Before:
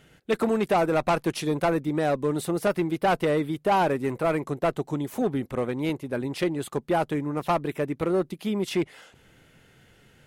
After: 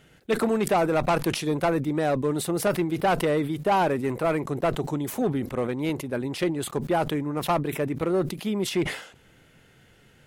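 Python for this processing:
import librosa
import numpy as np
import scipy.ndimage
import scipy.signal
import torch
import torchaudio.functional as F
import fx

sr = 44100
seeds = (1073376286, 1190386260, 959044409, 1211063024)

y = fx.sustainer(x, sr, db_per_s=98.0)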